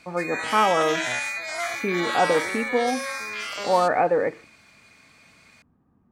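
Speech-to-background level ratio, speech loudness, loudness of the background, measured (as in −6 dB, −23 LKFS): 4.0 dB, −24.0 LKFS, −28.0 LKFS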